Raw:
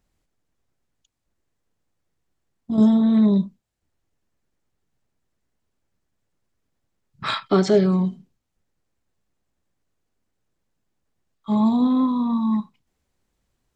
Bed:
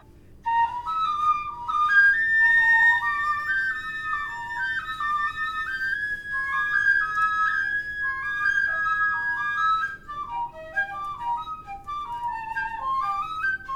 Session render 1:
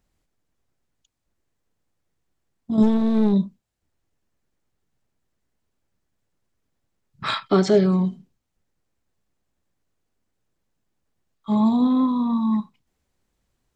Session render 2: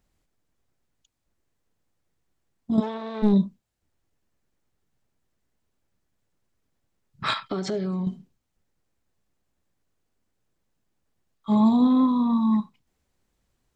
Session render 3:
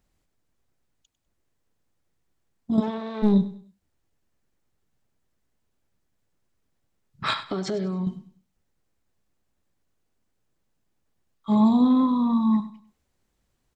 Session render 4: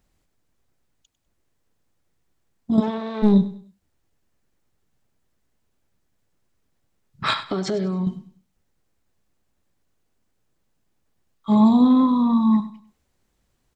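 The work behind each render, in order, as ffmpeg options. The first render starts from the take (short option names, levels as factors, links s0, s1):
-filter_complex "[0:a]asplit=3[s0][s1][s2];[s0]afade=t=out:st=2.82:d=0.02[s3];[s1]aeval=exprs='clip(val(0),-1,0.0631)':c=same,afade=t=in:st=2.82:d=0.02,afade=t=out:st=3.32:d=0.02[s4];[s2]afade=t=in:st=3.32:d=0.02[s5];[s3][s4][s5]amix=inputs=3:normalize=0"
-filter_complex "[0:a]asplit=3[s0][s1][s2];[s0]afade=t=out:st=2.79:d=0.02[s3];[s1]highpass=630,lowpass=3900,afade=t=in:st=2.79:d=0.02,afade=t=out:st=3.22:d=0.02[s4];[s2]afade=t=in:st=3.22:d=0.02[s5];[s3][s4][s5]amix=inputs=3:normalize=0,asettb=1/sr,asplit=3[s6][s7][s8];[s6]atrim=end=7.334[s9];[s7]atrim=start=7.33:end=8.07,asetpts=PTS-STARTPTS,afade=t=in:d=0.004:c=qsin,afade=t=out:st=0.736:d=0.004:c=qsin,acompressor=threshold=0.0501:ratio=5:attack=3.2:release=140:knee=1:detection=peak[s10];[s8]atrim=start=8.066[s11];[s9][s10]acrossfade=d=0.004:c1=hsin:c2=qsin[s12];[s12][s11]acrossfade=d=0.004:c1=qsin:c2=hsin"
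-af "aecho=1:1:99|198|297:0.168|0.052|0.0161"
-af "volume=1.5"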